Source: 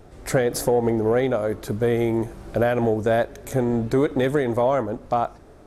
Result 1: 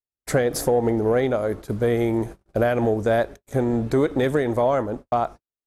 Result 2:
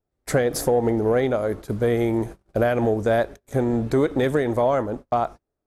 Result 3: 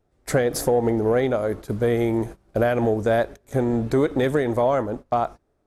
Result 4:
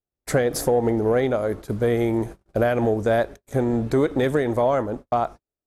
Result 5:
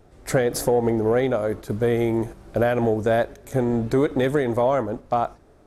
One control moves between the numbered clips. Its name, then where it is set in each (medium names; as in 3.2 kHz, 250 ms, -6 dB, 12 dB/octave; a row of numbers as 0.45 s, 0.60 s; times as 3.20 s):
gate, range: -59 dB, -35 dB, -22 dB, -47 dB, -6 dB